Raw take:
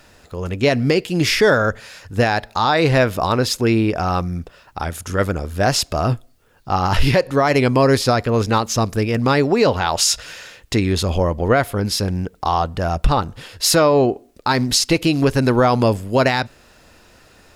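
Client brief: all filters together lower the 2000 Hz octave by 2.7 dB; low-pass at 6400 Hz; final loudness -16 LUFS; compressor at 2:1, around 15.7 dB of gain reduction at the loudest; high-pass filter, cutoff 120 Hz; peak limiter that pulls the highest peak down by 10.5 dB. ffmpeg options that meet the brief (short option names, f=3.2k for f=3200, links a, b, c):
-af "highpass=120,lowpass=6.4k,equalizer=f=2k:t=o:g=-3.5,acompressor=threshold=-41dB:ratio=2,volume=21dB,alimiter=limit=-5dB:level=0:latency=1"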